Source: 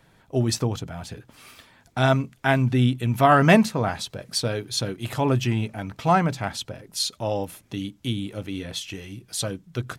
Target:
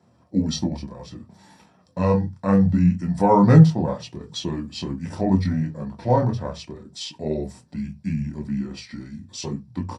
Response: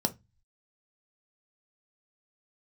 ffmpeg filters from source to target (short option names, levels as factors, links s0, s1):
-filter_complex "[0:a]flanger=delay=18:depth=6.1:speed=0.26,asetrate=32097,aresample=44100,atempo=1.37395[s0];[1:a]atrim=start_sample=2205,atrim=end_sample=6174[s1];[s0][s1]afir=irnorm=-1:irlink=0,volume=0.422"